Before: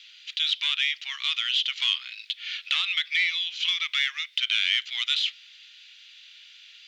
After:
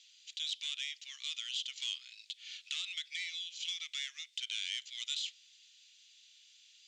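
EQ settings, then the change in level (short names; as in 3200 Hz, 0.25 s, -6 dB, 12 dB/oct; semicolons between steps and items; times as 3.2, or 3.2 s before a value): band-pass 7400 Hz, Q 3.5; +3.5 dB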